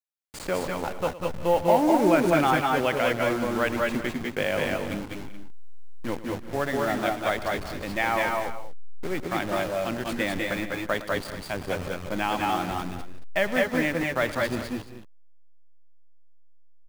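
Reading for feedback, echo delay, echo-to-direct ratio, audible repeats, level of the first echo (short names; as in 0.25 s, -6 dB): no steady repeat, 0.11 s, -0.5 dB, 5, -16.0 dB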